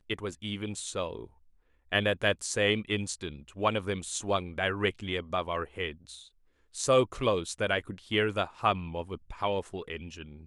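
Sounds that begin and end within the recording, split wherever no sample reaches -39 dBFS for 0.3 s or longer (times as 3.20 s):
1.92–6.17 s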